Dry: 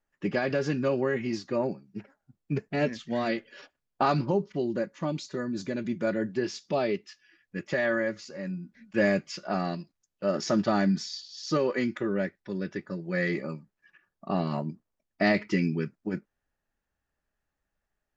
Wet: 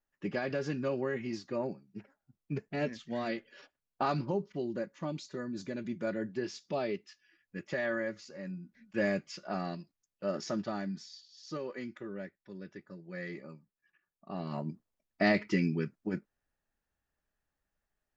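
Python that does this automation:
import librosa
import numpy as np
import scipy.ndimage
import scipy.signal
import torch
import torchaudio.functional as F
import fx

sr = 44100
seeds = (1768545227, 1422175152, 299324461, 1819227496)

y = fx.gain(x, sr, db=fx.line((10.31, -6.5), (10.86, -13.0), (14.29, -13.0), (14.7, -3.0)))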